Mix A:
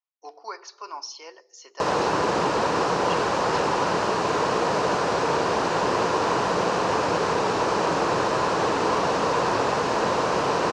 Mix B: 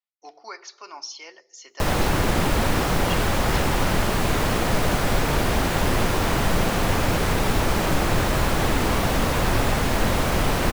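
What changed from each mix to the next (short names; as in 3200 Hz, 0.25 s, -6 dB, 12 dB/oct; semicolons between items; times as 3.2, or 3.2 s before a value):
master: remove speaker cabinet 220–6500 Hz, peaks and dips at 240 Hz -6 dB, 460 Hz +6 dB, 1000 Hz +7 dB, 2100 Hz -7 dB, 3400 Hz -6 dB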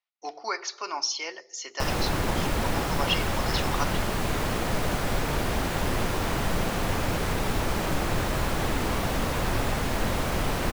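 speech +7.5 dB; background -5.5 dB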